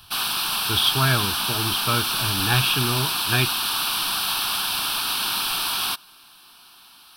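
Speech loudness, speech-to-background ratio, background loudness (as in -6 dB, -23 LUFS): -24.0 LUFS, -2.0 dB, -22.0 LUFS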